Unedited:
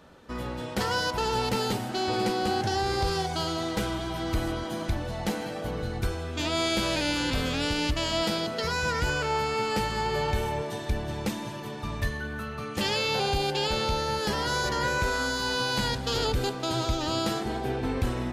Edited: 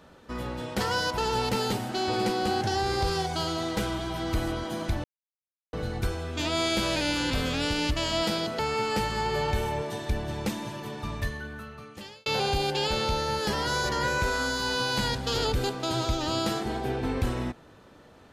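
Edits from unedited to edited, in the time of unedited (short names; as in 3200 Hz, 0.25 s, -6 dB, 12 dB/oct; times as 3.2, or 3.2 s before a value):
5.04–5.73 mute
8.59–9.39 cut
11.82–13.06 fade out linear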